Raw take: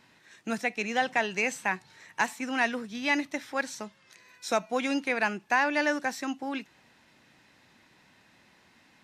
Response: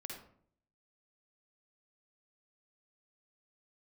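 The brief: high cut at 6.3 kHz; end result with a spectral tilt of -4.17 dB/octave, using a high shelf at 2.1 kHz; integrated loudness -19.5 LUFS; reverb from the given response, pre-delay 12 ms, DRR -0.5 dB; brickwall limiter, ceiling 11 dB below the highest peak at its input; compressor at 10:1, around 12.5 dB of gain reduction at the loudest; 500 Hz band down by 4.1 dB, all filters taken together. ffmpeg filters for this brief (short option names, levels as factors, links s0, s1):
-filter_complex "[0:a]lowpass=6300,equalizer=f=500:t=o:g=-4.5,highshelf=f=2100:g=-6.5,acompressor=threshold=0.0158:ratio=10,alimiter=level_in=2.66:limit=0.0631:level=0:latency=1,volume=0.376,asplit=2[s0][s1];[1:a]atrim=start_sample=2205,adelay=12[s2];[s1][s2]afir=irnorm=-1:irlink=0,volume=1.41[s3];[s0][s3]amix=inputs=2:normalize=0,volume=11.9"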